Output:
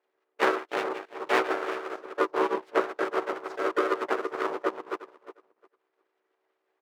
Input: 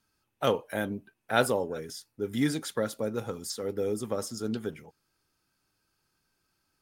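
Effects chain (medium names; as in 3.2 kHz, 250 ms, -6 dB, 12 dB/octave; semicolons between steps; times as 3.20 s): backward echo that repeats 178 ms, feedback 45%, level -5.5 dB; transient shaper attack +10 dB, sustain -12 dB; low-pass 1 kHz 12 dB/octave; comb 2.5 ms, depth 55%; full-wave rectifier; ring modulator 380 Hz; compression 2:1, threshold -26 dBFS, peak gain reduction 6 dB; harmony voices -3 st -6 dB, +3 st -5 dB, +7 st -13 dB; high-pass 540 Hz 12 dB/octave; trim +6 dB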